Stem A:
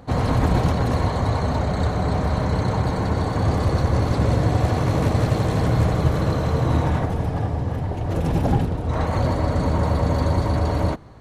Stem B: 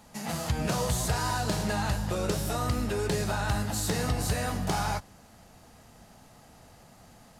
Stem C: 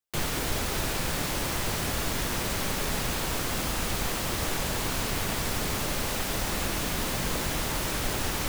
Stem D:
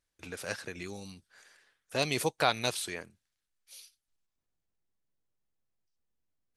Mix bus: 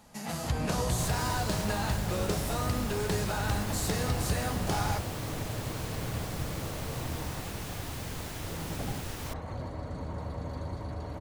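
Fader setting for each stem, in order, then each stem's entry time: -17.0 dB, -2.5 dB, -11.0 dB, off; 0.35 s, 0.00 s, 0.85 s, off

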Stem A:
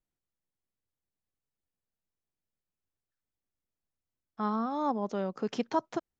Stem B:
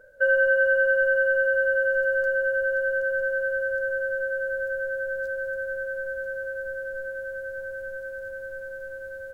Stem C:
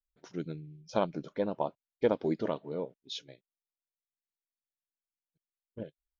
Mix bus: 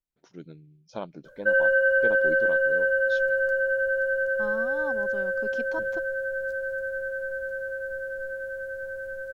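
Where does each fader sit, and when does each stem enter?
-7.5, -0.5, -6.0 dB; 0.00, 1.25, 0.00 s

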